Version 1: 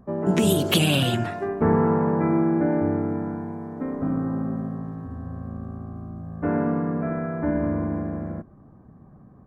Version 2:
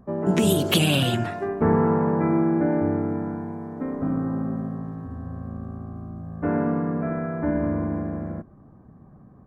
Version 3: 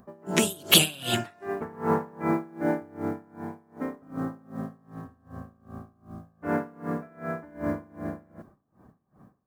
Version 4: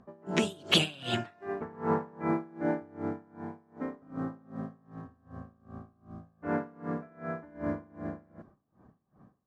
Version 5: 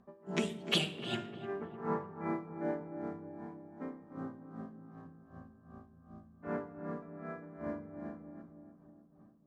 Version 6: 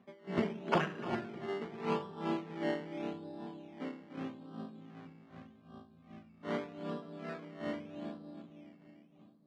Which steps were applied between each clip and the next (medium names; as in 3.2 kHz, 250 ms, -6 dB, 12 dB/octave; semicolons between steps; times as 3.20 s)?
no audible change
tilt EQ +2.5 dB/octave; modulation noise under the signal 34 dB; logarithmic tremolo 2.6 Hz, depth 26 dB; trim +2.5 dB
distance through air 110 m; trim -3.5 dB
filtered feedback delay 302 ms, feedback 62%, low-pass 1.2 kHz, level -10 dB; simulated room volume 3300 m³, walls furnished, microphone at 1.2 m; trim -7 dB
decimation with a swept rate 14×, swing 60% 0.82 Hz; band-pass 140–2600 Hz; trim +1.5 dB